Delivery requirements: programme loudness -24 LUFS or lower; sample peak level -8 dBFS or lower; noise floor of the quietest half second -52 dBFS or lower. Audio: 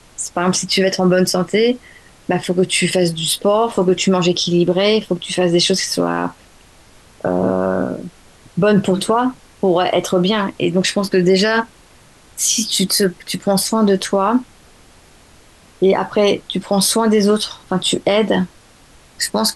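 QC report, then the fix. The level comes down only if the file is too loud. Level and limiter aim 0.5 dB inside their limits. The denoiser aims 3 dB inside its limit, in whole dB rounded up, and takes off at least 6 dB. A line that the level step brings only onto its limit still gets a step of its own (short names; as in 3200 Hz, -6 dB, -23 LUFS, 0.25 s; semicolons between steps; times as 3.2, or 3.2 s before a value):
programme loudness -16.5 LUFS: fail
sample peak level -5.0 dBFS: fail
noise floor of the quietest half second -47 dBFS: fail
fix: gain -8 dB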